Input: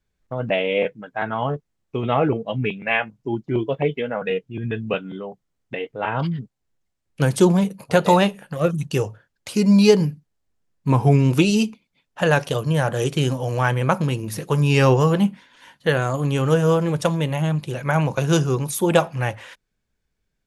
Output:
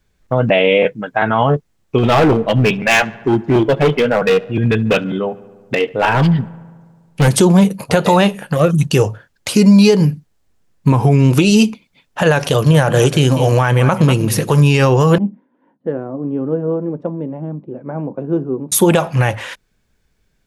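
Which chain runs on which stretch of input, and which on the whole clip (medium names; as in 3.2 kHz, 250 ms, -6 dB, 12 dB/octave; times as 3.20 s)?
1.98–7.28 s: hard clipper -20.5 dBFS + filtered feedback delay 72 ms, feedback 76%, low-pass 3.5 kHz, level -22 dB
12.43–14.62 s: upward compressor, threshold -28 dBFS + delay 195 ms -16 dB
15.18–18.72 s: ladder band-pass 310 Hz, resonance 45% + tape noise reduction on one side only decoder only
whole clip: compression, threshold -18 dBFS; loudness maximiser +13.5 dB; trim -1 dB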